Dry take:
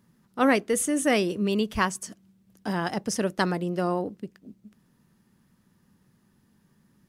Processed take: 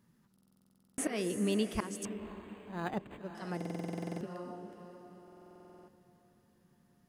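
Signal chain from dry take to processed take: slow attack 231 ms; on a send: echo that smears into a reverb 539 ms, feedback 41%, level -11 dB; on the sum: buffer glitch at 0.33/3.56/5.23 s, samples 2048, times 13; 2.05–3.35 s: decimation joined by straight lines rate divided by 8×; trim -6 dB

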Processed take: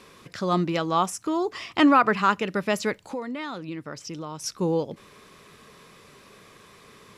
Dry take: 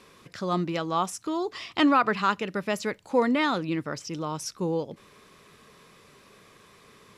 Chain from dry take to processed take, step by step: 1.05–2.41 s: peaking EQ 3.9 kHz -5.5 dB 0.65 oct; 3.04–4.44 s: compression 3:1, threshold -38 dBFS, peak gain reduction 15.5 dB; trim +3.5 dB

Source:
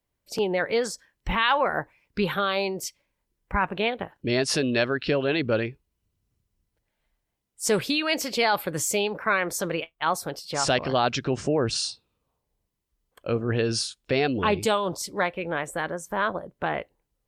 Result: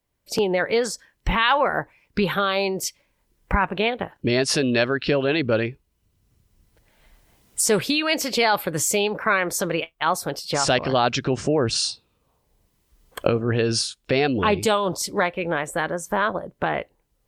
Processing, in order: recorder AGC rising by 11 dB/s; trim +3 dB

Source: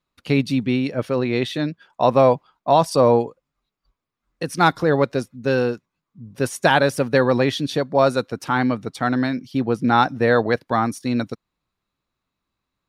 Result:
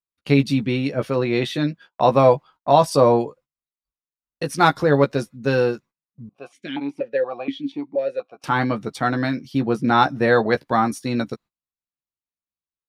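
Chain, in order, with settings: gate -44 dBFS, range -25 dB; doubling 14 ms -7 dB; 6.29–8.44 s: stepped vowel filter 4.2 Hz

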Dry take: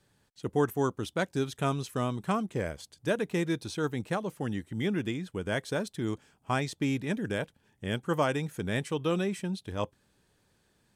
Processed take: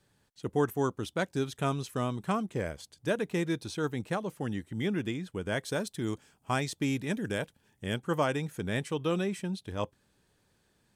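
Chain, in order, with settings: 5.64–7.94 s: treble shelf 5.1 kHz +6 dB; trim -1 dB

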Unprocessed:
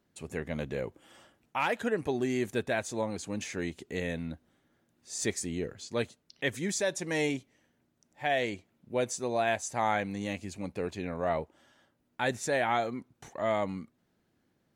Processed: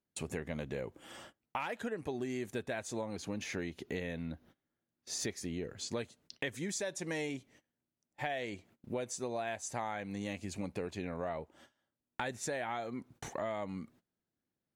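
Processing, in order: gate -59 dBFS, range -23 dB; 3.16–5.65 s: peaking EQ 8 kHz -12 dB 0.4 oct; compression 6:1, threshold -42 dBFS, peak gain reduction 17.5 dB; trim +6 dB

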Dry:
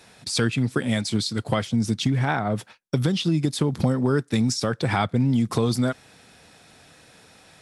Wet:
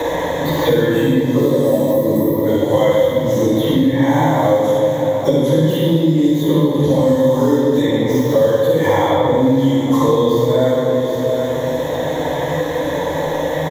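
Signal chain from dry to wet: dead-time distortion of 0.077 ms; spectral replace 0.73–1.35 s, 1.3–7.7 kHz before; rippled EQ curve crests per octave 1.1, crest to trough 16 dB; peak limiter -12 dBFS, peak gain reduction 6.5 dB; high-order bell 530 Hz +11.5 dB; plain phase-vocoder stretch 1.8×; delay 775 ms -18 dB; reverberation RT60 2.0 s, pre-delay 33 ms, DRR -7.5 dB; three bands compressed up and down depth 100%; trim -2 dB

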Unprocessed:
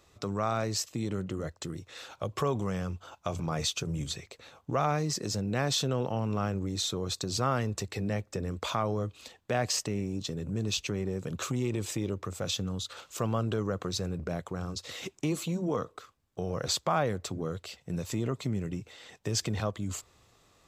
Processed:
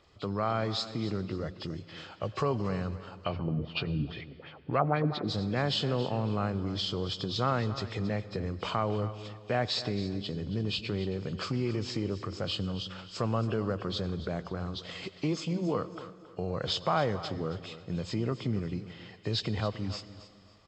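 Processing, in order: knee-point frequency compression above 2.3 kHz 1.5:1; feedback delay 273 ms, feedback 29%, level -14.5 dB; 3.24–5.27 s: LFO low-pass sine 1.6 Hz -> 5.8 Hz 230–3300 Hz; reverberation RT60 2.1 s, pre-delay 77 ms, DRR 17 dB

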